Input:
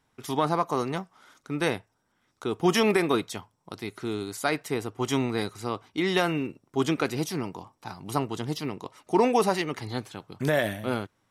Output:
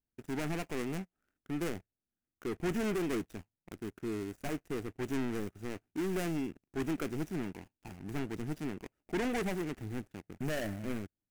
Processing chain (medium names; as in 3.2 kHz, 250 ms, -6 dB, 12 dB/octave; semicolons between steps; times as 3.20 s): median filter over 41 samples; waveshaping leveller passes 3; graphic EQ 125/250/500/1000/4000 Hz -10/-3/-9/-10/-9 dB; trim -6 dB